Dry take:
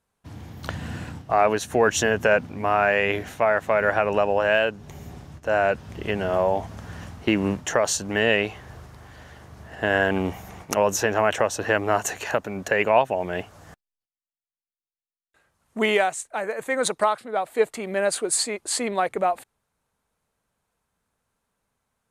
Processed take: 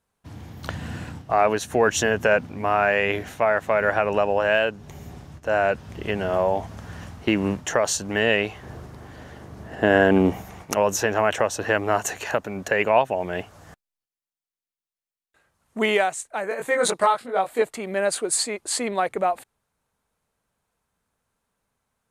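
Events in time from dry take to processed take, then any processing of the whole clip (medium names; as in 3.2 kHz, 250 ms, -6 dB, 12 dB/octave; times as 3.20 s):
8.63–10.43 s: peaking EQ 290 Hz +8.5 dB 2.4 oct
16.49–17.62 s: doubling 21 ms -2 dB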